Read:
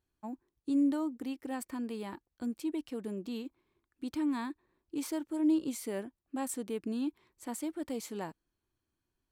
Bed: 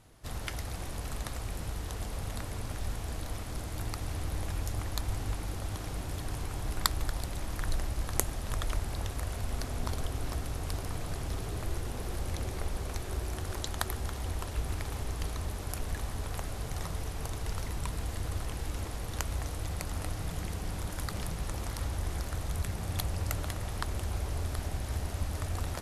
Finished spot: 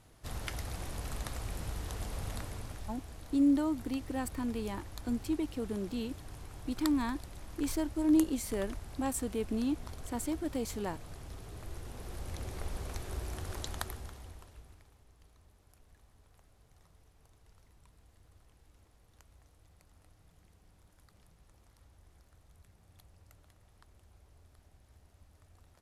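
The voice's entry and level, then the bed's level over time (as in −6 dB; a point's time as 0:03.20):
2.65 s, +2.0 dB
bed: 0:02.35 −2 dB
0:03.08 −11 dB
0:11.42 −11 dB
0:12.73 −4 dB
0:13.74 −4 dB
0:14.98 −27.5 dB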